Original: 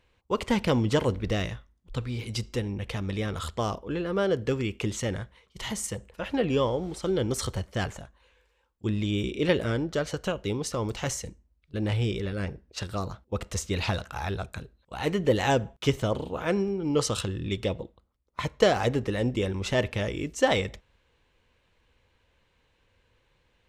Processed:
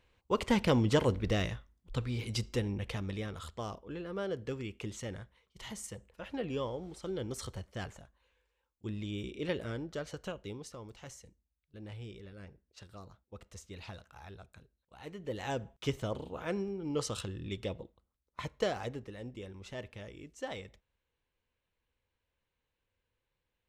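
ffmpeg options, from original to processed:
-af "volume=2.11,afade=t=out:st=2.7:d=0.68:silence=0.398107,afade=t=out:st=10.3:d=0.54:silence=0.421697,afade=t=in:st=15.18:d=0.67:silence=0.334965,afade=t=out:st=18.4:d=0.71:silence=0.375837"

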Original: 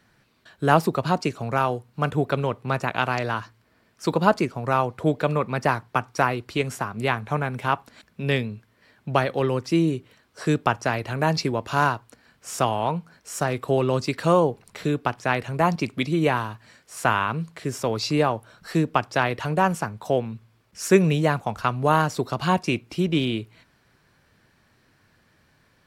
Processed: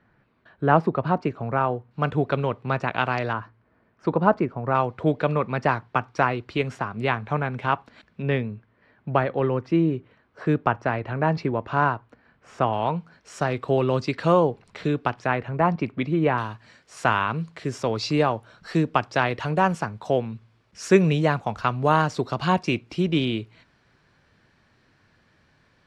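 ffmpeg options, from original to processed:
-af "asetnsamples=n=441:p=0,asendcmd='1.91 lowpass f 3700;3.33 lowpass f 1600;4.75 lowpass f 3600;8.22 lowpass f 2000;12.73 lowpass f 4300;15.27 lowpass f 2100;16.38 lowpass f 5600',lowpass=1800"

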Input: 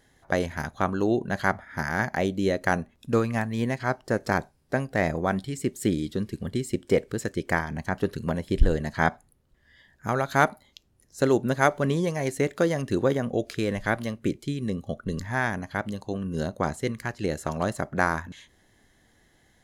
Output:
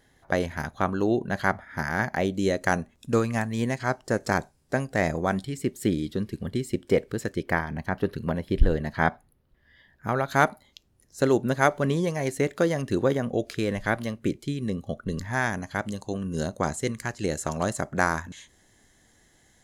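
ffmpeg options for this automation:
-af "asetnsamples=n=441:p=0,asendcmd='2.34 equalizer g 6.5;5.45 equalizer g -3.5;7.43 equalizer g -11;10.28 equalizer g 0;15.33 equalizer g 9',equalizer=f=7500:t=o:w=0.9:g=-2"

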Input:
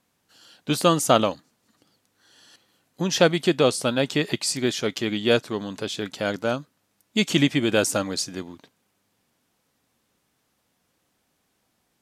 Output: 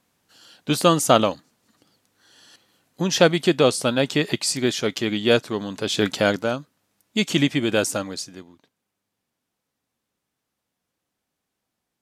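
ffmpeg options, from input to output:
-af "volume=3.16,afade=t=in:st=5.81:d=0.24:silence=0.398107,afade=t=out:st=6.05:d=0.45:silence=0.316228,afade=t=out:st=7.78:d=0.7:silence=0.334965"

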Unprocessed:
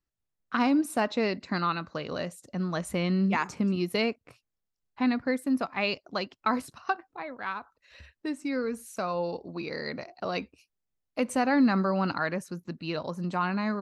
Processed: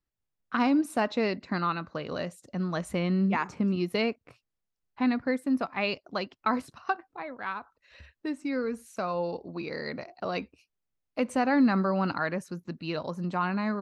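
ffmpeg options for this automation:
-af "asetnsamples=n=441:p=0,asendcmd='0.6 lowpass f 6200;1.35 lowpass f 3000;2.07 lowpass f 5900;2.99 lowpass f 2600;3.71 lowpass f 4400;12.38 lowpass f 7300;13.2 lowpass f 4100',lowpass=f=3800:p=1"

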